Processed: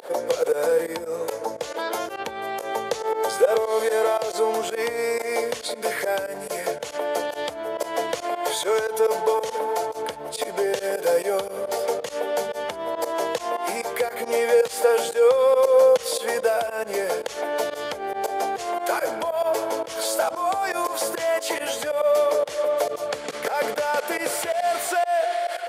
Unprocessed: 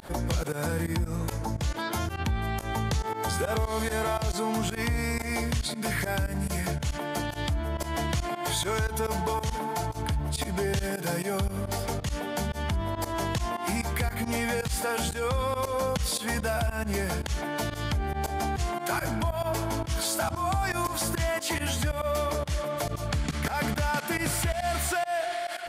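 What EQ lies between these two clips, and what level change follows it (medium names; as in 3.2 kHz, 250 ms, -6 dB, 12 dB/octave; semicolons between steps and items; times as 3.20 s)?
resonant high-pass 490 Hz, resonance Q 5.5; +1.5 dB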